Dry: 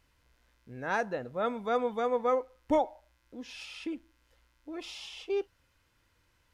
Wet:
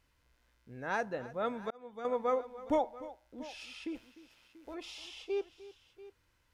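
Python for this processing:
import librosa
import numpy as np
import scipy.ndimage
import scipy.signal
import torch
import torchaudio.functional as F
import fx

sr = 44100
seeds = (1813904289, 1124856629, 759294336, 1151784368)

y = fx.spec_clip(x, sr, under_db=19, at=(3.94, 4.73), fade=0.02)
y = fx.echo_multitap(y, sr, ms=(301, 687), db=(-17.5, -18.0))
y = fx.auto_swell(y, sr, attack_ms=781.0, at=(1.3, 2.05))
y = y * 10.0 ** (-3.5 / 20.0)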